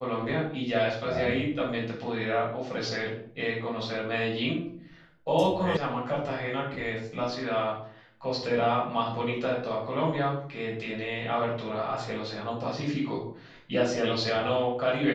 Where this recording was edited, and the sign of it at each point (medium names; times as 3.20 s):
5.77 s: sound stops dead